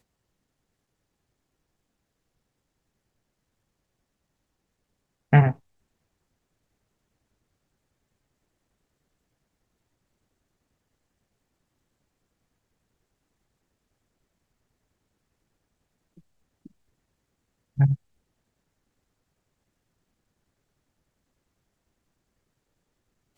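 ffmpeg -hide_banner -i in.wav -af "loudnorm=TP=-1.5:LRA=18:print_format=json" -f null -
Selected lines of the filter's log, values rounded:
"input_i" : "-22.3",
"input_tp" : "-3.6",
"input_lra" : "4.2",
"input_thresh" : "-35.3",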